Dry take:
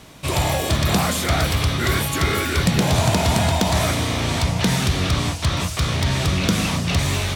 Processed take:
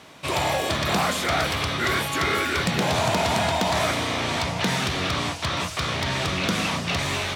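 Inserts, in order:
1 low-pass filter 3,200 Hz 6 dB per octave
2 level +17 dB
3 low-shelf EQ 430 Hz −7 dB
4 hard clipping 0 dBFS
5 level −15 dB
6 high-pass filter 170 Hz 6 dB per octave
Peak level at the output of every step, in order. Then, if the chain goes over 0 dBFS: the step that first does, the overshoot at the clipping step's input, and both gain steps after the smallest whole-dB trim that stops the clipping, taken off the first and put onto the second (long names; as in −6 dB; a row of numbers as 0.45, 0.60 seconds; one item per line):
−9.0, +8.0, +6.5, 0.0, −15.0, −11.5 dBFS
step 2, 6.5 dB
step 2 +10 dB, step 5 −8 dB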